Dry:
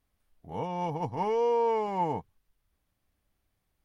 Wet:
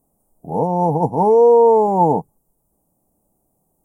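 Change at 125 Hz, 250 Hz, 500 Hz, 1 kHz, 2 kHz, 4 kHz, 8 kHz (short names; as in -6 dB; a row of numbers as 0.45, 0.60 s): +15.0 dB, +16.0 dB, +16.0 dB, +13.5 dB, under -10 dB, under -10 dB, n/a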